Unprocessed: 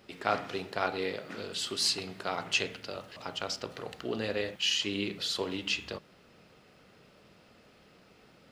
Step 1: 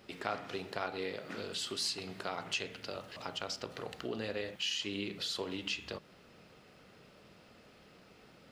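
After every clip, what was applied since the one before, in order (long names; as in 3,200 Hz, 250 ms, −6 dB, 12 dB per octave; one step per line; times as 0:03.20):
downward compressor 2 to 1, threshold −38 dBFS, peak gain reduction 9 dB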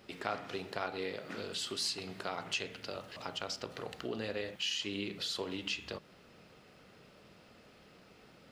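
no processing that can be heard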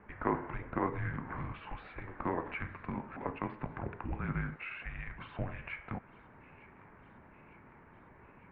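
high-frequency loss of the air 160 metres
delay with a high-pass on its return 905 ms, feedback 67%, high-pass 1,500 Hz, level −19 dB
single-sideband voice off tune −360 Hz 440–2,300 Hz
level +6.5 dB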